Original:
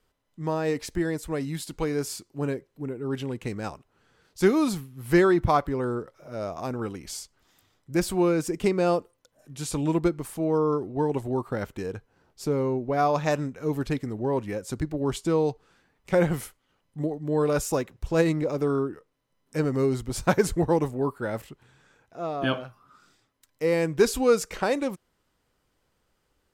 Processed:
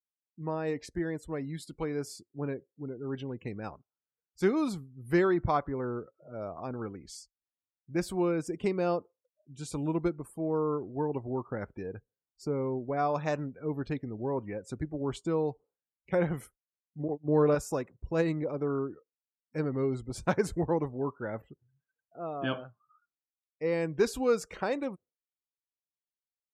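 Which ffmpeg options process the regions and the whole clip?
ffmpeg -i in.wav -filter_complex "[0:a]asettb=1/sr,asplit=3[link_01][link_02][link_03];[link_01]atrim=end=17.084[link_04];[link_02]atrim=start=17.08:end=17.55,asetpts=PTS-STARTPTS,afade=type=in:duration=0.004:curve=qsin,afade=type=out:start_time=0.466:duration=0.004:curve=qsin,highshelf=frequency=2800:gain=-7,acontrast=56,agate=range=-23dB:threshold=-27dB:ratio=16:release=100:detection=peak[link_05];[link_03]atrim=start=17.546[link_06];[link_04][link_05]acrossfade=duration=0.004:curve1=hsin:curve2=qsin[link_07];[link_07][link_06]acrossfade=duration=0.004:curve1=qsin:curve2=hsin,afftdn=noise_reduction=35:noise_floor=-45,highpass=43,highshelf=frequency=6100:gain=-5.5,volume=-6dB" out.wav

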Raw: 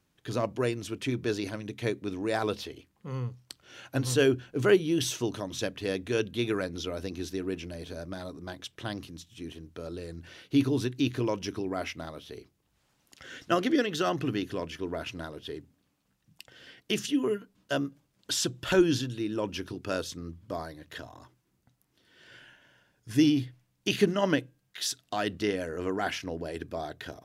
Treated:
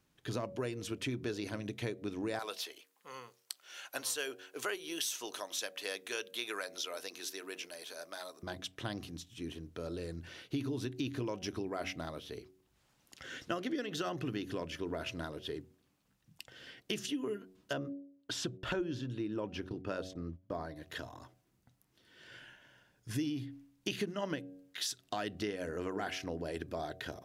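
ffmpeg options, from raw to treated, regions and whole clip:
ffmpeg -i in.wav -filter_complex "[0:a]asettb=1/sr,asplit=3[link_01][link_02][link_03];[link_01]atrim=end=2.394[link_04];[link_02]atrim=start=2.39:end=8.43,asetpts=PTS-STARTPTS,afade=type=in:duration=0.004:curve=qsin,afade=type=out:start_time=6.036:duration=0.004:curve=qsin,highpass=720,highshelf=frequency=7400:gain=10.5[link_05];[link_03]atrim=start=8.426[link_06];[link_04][link_05]acrossfade=duration=0.004:curve1=hsin:curve2=qsin[link_07];[link_07][link_06]acrossfade=duration=0.004:curve1=qsin:curve2=hsin,asettb=1/sr,asplit=3[link_08][link_09][link_10];[link_08]atrim=end=17.734[link_11];[link_09]atrim=start=17.73:end=20.76,asetpts=PTS-STARTPTS,afade=type=in:duration=0.004:curve=qsin,afade=type=out:start_time=3.026:duration=0.004:curve=qsin,lowpass=frequency=2000:poles=1,agate=range=-16dB:threshold=-47dB:ratio=16:release=100:detection=peak[link_12];[link_10]atrim=start=20.756[link_13];[link_11][link_12]acrossfade=duration=0.004:curve1=hsin:curve2=qsin[link_14];[link_14][link_13]acrossfade=duration=0.004:curve1=qsin:curve2=hsin,bandreject=frequency=93.35:width_type=h:width=4,bandreject=frequency=186.7:width_type=h:width=4,bandreject=frequency=280.05:width_type=h:width=4,bandreject=frequency=373.4:width_type=h:width=4,bandreject=frequency=466.75:width_type=h:width=4,bandreject=frequency=560.1:width_type=h:width=4,bandreject=frequency=653.45:width_type=h:width=4,bandreject=frequency=746.8:width_type=h:width=4,acompressor=threshold=-33dB:ratio=5,volume=-1dB" out.wav

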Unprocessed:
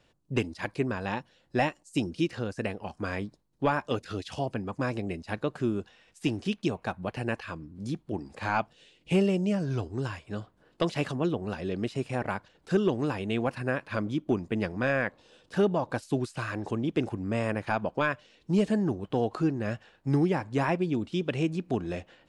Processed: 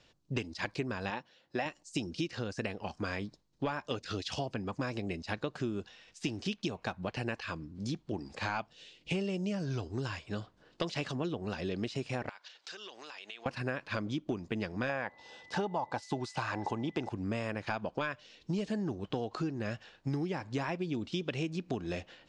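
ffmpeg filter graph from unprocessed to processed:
ffmpeg -i in.wav -filter_complex "[0:a]asettb=1/sr,asplit=3[link_01][link_02][link_03];[link_01]atrim=end=1.104[link_04];[link_02]atrim=start=1.1:end=1.66,asetpts=PTS-STARTPTS,afade=type=in:duration=0.004:curve=qsin,afade=type=out:start_time=0.556:duration=0.004:curve=qsin,highpass=frequency=310:poles=1,highshelf=frequency=4300:gain=-10[link_05];[link_03]atrim=start=1.656[link_06];[link_04][link_05]acrossfade=duration=0.004:curve1=hsin:curve2=qsin[link_07];[link_07][link_06]acrossfade=duration=0.004:curve1=qsin:curve2=hsin,asettb=1/sr,asplit=3[link_08][link_09][link_10];[link_08]atrim=end=12.294[link_11];[link_09]atrim=start=12.29:end=13.46,asetpts=PTS-STARTPTS,afade=type=in:duration=0.004:curve=qsin,afade=type=out:start_time=1.166:duration=0.004:curve=qsin,highpass=750,lowpass=5600,highshelf=frequency=2300:gain=11.5,acompressor=threshold=-46dB:ratio=6:attack=3.2:release=140:knee=1:detection=peak[link_12];[link_10]atrim=start=13.456[link_13];[link_11][link_12]acrossfade=duration=0.004:curve1=hsin:curve2=qsin[link_14];[link_14][link_13]acrossfade=duration=0.004:curve1=qsin:curve2=hsin,asettb=1/sr,asplit=3[link_15][link_16][link_17];[link_15]atrim=end=14.894[link_18];[link_16]atrim=start=14.89:end=17.09,asetpts=PTS-STARTPTS,afade=type=in:duration=0.004:curve=qsin,afade=type=out:start_time=2.196:duration=0.004:curve=qsin,highpass=46,equalizer=frequency=860:width_type=o:width=0.53:gain=14,aeval=exprs='val(0)+0.00158*sin(2*PI*2000*n/s)':channel_layout=same[link_19];[link_17]atrim=start=17.086[link_20];[link_18][link_19]acrossfade=duration=0.004:curve1=hsin:curve2=qsin[link_21];[link_21][link_20]acrossfade=duration=0.004:curve1=qsin:curve2=hsin,lowpass=frequency=5900:width=0.5412,lowpass=frequency=5900:width=1.3066,aemphasis=mode=production:type=75fm,acompressor=threshold=-31dB:ratio=6" out.wav

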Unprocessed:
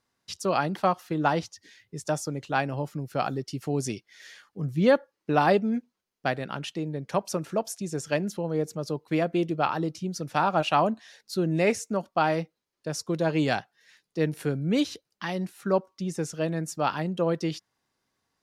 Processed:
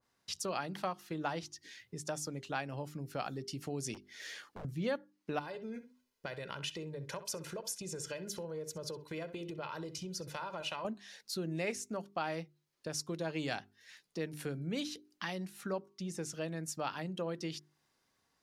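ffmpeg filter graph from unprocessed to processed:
ffmpeg -i in.wav -filter_complex "[0:a]asettb=1/sr,asplit=3[link_01][link_02][link_03];[link_01]atrim=end=3.944[link_04];[link_02]atrim=start=3.94:end=4.65,asetpts=PTS-STARTPTS,afade=type=in:duration=0.004:curve=qsin,afade=type=out:start_time=0.706:duration=0.004:curve=qsin,equalizer=frequency=330:width=0.74:gain=9,acompressor=threshold=-37dB:ratio=3:attack=3.2:release=140:knee=1:detection=peak,aeval=exprs='0.0119*(abs(mod(val(0)/0.0119+3,4)-2)-1)':channel_layout=same[link_05];[link_03]atrim=start=4.646[link_06];[link_04][link_05]acrossfade=duration=0.004:curve1=hsin:curve2=qsin[link_07];[link_07][link_06]acrossfade=duration=0.004:curve1=qsin:curve2=hsin,asettb=1/sr,asplit=3[link_08][link_09][link_10];[link_08]atrim=end=5.394[link_11];[link_09]atrim=start=5.39:end=10.85,asetpts=PTS-STARTPTS,afade=type=in:duration=0.004:curve=qsin,afade=type=out:start_time=5.456:duration=0.004:curve=qsin,aecho=1:1:2:0.61,atrim=end_sample=240786,acompressor=threshold=-32dB:ratio=4:attack=3.2:release=140:knee=1:detection=peak,asplit=2[link_12][link_13];[link_13]adelay=64,lowpass=frequency=3200:poles=1,volume=-13dB,asplit=2[link_14][link_15];[link_15]adelay=64,lowpass=frequency=3200:poles=1,volume=0.18[link_16];[link_12][link_14][link_16]amix=inputs=3:normalize=0,atrim=end_sample=240786[link_17];[link_10]atrim=start=10.846[link_18];[link_11][link_17]acrossfade=duration=0.004:curve1=hsin:curve2=qsin[link_19];[link_19][link_18]acrossfade=duration=0.004:curve1=qsin:curve2=hsin,bandreject=frequency=50:width_type=h:width=6,bandreject=frequency=100:width_type=h:width=6,bandreject=frequency=150:width_type=h:width=6,bandreject=frequency=200:width_type=h:width=6,bandreject=frequency=250:width_type=h:width=6,bandreject=frequency=300:width_type=h:width=6,bandreject=frequency=350:width_type=h:width=6,bandreject=frequency=400:width_type=h:width=6,acompressor=threshold=-45dB:ratio=2,adynamicequalizer=threshold=0.00282:dfrequency=1600:dqfactor=0.7:tfrequency=1600:tqfactor=0.7:attack=5:release=100:ratio=0.375:range=2.5:mode=boostabove:tftype=highshelf" out.wav

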